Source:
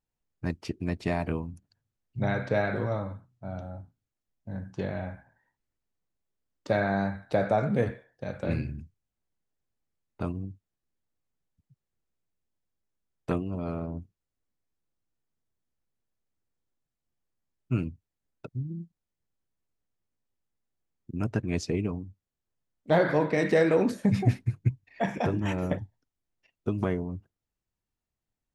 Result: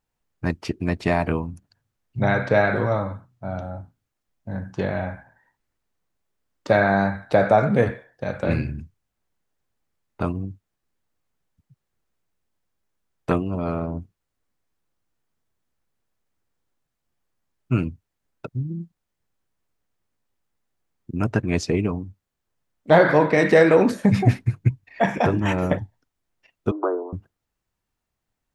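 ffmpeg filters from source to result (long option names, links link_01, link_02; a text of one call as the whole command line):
ffmpeg -i in.wav -filter_complex "[0:a]asettb=1/sr,asplit=3[link_01][link_02][link_03];[link_01]atrim=end=26.714[link_04];[link_02]atrim=start=26.71:end=27.13,asetpts=PTS-STARTPTS,afade=type=in:duration=0.004:curve=qsin,afade=type=out:start_time=0.416:duration=0.004:curve=qsin,asuperpass=centerf=650:order=20:qfactor=0.56[link_05];[link_03]atrim=start=27.126[link_06];[link_04][link_05]acrossfade=duration=0.004:curve1=hsin:curve2=qsin[link_07];[link_07][link_06]acrossfade=duration=0.004:curve1=qsin:curve2=hsin,equalizer=frequency=1200:width=0.58:gain=4.5,volume=6dB" out.wav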